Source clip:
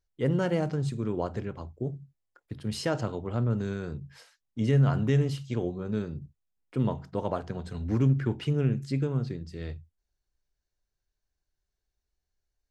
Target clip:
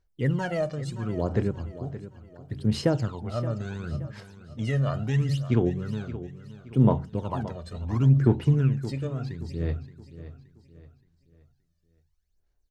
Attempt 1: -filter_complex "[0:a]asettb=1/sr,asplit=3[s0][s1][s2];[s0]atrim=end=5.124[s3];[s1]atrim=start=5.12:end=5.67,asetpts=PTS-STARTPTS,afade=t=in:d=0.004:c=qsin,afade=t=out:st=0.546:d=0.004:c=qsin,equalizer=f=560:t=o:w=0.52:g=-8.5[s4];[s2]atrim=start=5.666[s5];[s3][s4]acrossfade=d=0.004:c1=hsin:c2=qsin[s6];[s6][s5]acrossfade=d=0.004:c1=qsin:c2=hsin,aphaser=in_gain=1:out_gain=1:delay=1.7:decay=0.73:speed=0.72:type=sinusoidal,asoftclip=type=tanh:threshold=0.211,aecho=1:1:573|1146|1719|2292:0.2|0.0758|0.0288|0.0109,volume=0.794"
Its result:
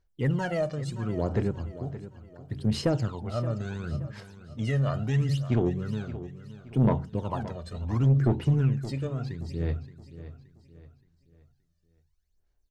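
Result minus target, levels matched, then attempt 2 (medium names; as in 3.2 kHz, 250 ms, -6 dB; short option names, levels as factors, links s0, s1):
saturation: distortion +18 dB
-filter_complex "[0:a]asettb=1/sr,asplit=3[s0][s1][s2];[s0]atrim=end=5.124[s3];[s1]atrim=start=5.12:end=5.67,asetpts=PTS-STARTPTS,afade=t=in:d=0.004:c=qsin,afade=t=out:st=0.546:d=0.004:c=qsin,equalizer=f=560:t=o:w=0.52:g=-8.5[s4];[s2]atrim=start=5.666[s5];[s3][s4]acrossfade=d=0.004:c1=hsin:c2=qsin[s6];[s6][s5]acrossfade=d=0.004:c1=qsin:c2=hsin,aphaser=in_gain=1:out_gain=1:delay=1.7:decay=0.73:speed=0.72:type=sinusoidal,asoftclip=type=tanh:threshold=0.841,aecho=1:1:573|1146|1719|2292:0.2|0.0758|0.0288|0.0109,volume=0.794"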